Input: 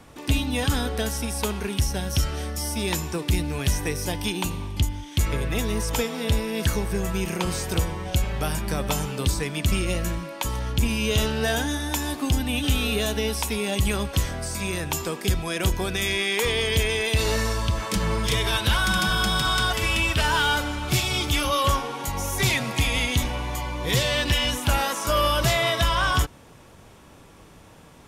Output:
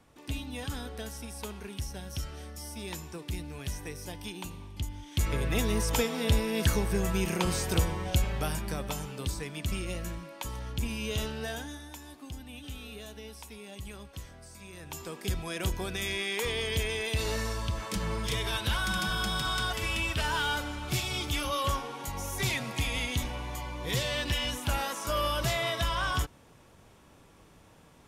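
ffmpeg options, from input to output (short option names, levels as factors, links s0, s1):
-af "volume=2.82,afade=t=in:st=4.78:d=0.78:silence=0.298538,afade=t=out:st=8.04:d=0.9:silence=0.421697,afade=t=out:st=11.22:d=0.76:silence=0.334965,afade=t=in:st=14.72:d=0.66:silence=0.266073"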